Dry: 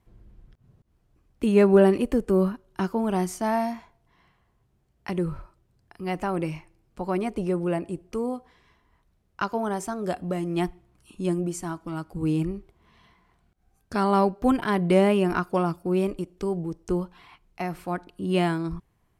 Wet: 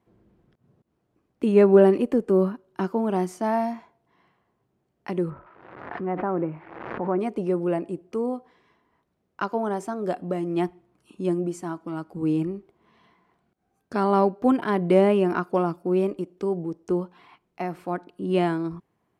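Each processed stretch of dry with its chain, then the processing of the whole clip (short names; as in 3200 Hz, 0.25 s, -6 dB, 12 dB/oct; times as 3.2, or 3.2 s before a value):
5.3–7.19 switching spikes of -27 dBFS + LPF 1700 Hz 24 dB/oct + backwards sustainer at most 48 dB/s
whole clip: HPF 270 Hz 12 dB/oct; tilt -2.5 dB/oct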